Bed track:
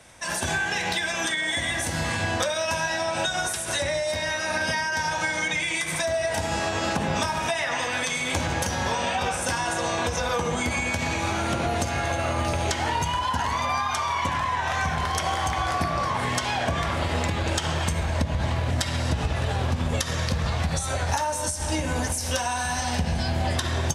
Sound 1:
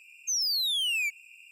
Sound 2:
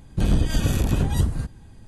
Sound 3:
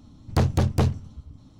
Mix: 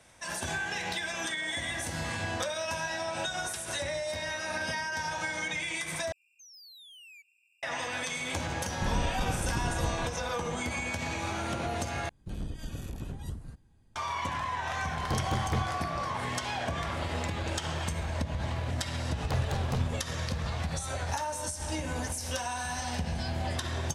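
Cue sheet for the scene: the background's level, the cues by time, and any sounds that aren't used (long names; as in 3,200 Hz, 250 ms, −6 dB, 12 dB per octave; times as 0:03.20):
bed track −7.5 dB
0:06.12: overwrite with 1 −17.5 dB + brickwall limiter −32 dBFS
0:08.64: mix in 2 −11.5 dB
0:12.09: overwrite with 2 −17.5 dB
0:14.74: mix in 3 −10 dB
0:18.94: mix in 3 −8 dB + parametric band 280 Hz −13 dB 0.94 octaves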